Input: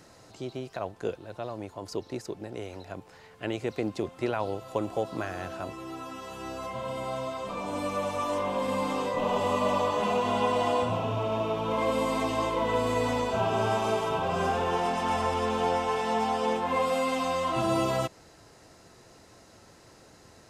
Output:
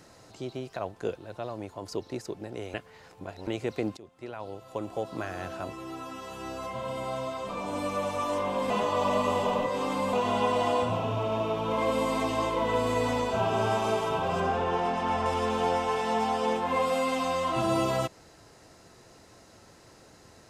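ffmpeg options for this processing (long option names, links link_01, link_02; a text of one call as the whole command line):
ffmpeg -i in.wav -filter_complex "[0:a]asettb=1/sr,asplit=3[link_01][link_02][link_03];[link_01]atrim=end=14.404[link_04];[link_02]atrim=start=14.4:end=15.26,asetpts=PTS-STARTPTS,afade=type=in:duration=0.004:curve=qsin,afade=type=out:start_time=0.856:duration=0.004:curve=qsin,aemphasis=mode=reproduction:type=50kf[link_05];[link_03]atrim=start=15.256[link_06];[link_04][link_05]acrossfade=duration=0.004:curve1=hsin:curve2=qsin[link_07];[link_07][link_06]acrossfade=duration=0.004:curve1=qsin:curve2=hsin,asplit=6[link_08][link_09][link_10][link_11][link_12][link_13];[link_08]atrim=end=2.742[link_14];[link_09]atrim=start=2.738:end=3.472,asetpts=PTS-STARTPTS,areverse[link_15];[link_10]atrim=start=3.468:end=3.97,asetpts=PTS-STARTPTS,afade=type=out:start_time=0.498:duration=0.004:curve=hsin:silence=0.1[link_16];[link_11]atrim=start=3.97:end=8.702,asetpts=PTS-STARTPTS,afade=type=in:duration=1.5:silence=0.1[link_17];[link_12]atrim=start=8.698:end=10.132,asetpts=PTS-STARTPTS,areverse[link_18];[link_13]atrim=start=10.128[link_19];[link_14][link_15]acrossfade=duration=0.004:curve1=hsin:curve2=hsin[link_20];[link_16][link_17]concat=n=2:v=0:a=1[link_21];[link_20][link_21]acrossfade=duration=0.004:curve1=hsin:curve2=hsin[link_22];[link_22][link_18]acrossfade=duration=0.004:curve1=hsin:curve2=hsin[link_23];[link_23][link_19]acrossfade=duration=0.004:curve1=hsin:curve2=hsin" out.wav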